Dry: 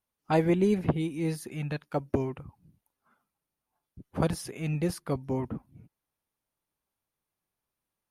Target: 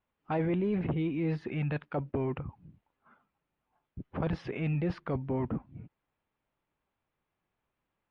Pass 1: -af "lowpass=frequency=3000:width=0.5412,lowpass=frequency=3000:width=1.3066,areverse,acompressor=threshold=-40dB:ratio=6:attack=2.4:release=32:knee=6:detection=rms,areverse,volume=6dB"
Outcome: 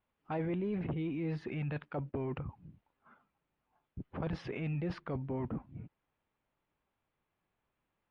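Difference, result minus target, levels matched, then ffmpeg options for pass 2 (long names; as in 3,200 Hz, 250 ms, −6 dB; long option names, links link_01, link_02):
downward compressor: peak gain reduction +5.5 dB
-af "lowpass=frequency=3000:width=0.5412,lowpass=frequency=3000:width=1.3066,areverse,acompressor=threshold=-33.5dB:ratio=6:attack=2.4:release=32:knee=6:detection=rms,areverse,volume=6dB"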